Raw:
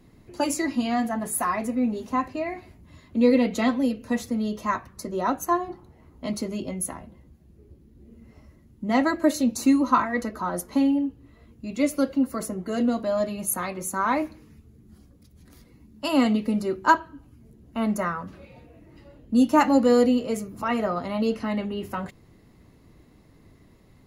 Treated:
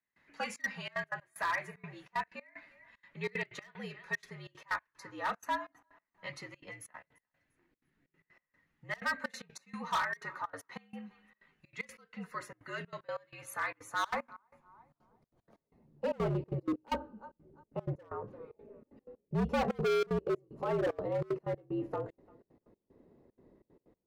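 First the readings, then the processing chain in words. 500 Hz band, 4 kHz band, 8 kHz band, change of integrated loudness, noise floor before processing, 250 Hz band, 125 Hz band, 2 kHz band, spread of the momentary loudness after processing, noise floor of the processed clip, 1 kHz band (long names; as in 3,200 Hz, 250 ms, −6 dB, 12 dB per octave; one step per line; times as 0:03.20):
−10.5 dB, −9.5 dB, −18.5 dB, −12.5 dB, −55 dBFS, −19.5 dB, −3.5 dB, −5.5 dB, 17 LU, below −85 dBFS, −12.0 dB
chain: feedback echo with a high-pass in the loop 345 ms, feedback 29%, high-pass 590 Hz, level −23.5 dB
band-pass filter sweep 1,900 Hz → 510 Hz, 0:13.47–0:16.23
hard clipping −30 dBFS, distortion −4 dB
frequency shifter −69 Hz
gate pattern "..xxxxx.xxx.x.x" 188 BPM −24 dB
level +2.5 dB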